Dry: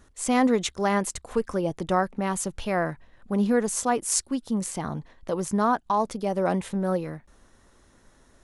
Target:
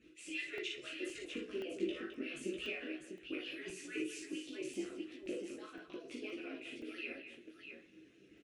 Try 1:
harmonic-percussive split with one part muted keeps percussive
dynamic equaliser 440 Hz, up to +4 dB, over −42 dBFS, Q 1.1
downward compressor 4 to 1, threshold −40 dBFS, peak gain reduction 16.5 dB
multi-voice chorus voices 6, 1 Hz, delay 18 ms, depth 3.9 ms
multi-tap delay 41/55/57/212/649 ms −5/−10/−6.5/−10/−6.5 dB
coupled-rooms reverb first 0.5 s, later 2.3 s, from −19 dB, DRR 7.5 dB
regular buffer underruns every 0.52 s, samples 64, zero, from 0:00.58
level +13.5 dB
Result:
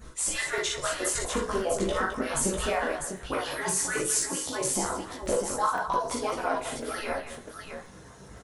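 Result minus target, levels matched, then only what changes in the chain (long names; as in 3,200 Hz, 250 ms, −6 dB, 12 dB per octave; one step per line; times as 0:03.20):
1,000 Hz band +15.5 dB
add after downward compressor: pair of resonant band-passes 920 Hz, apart 3 octaves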